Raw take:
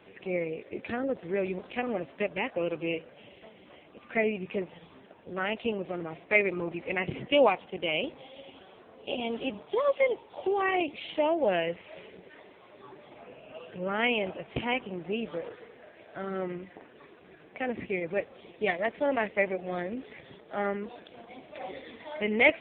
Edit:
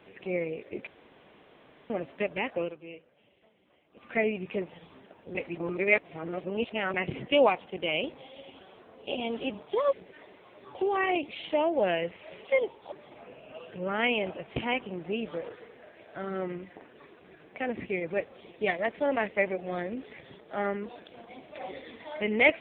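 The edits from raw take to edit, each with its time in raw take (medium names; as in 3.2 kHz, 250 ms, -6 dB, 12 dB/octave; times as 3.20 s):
0.87–1.90 s: room tone
2.60–4.05 s: dip -13.5 dB, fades 0.15 s
5.35–6.94 s: reverse
9.93–10.40 s: swap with 12.10–12.92 s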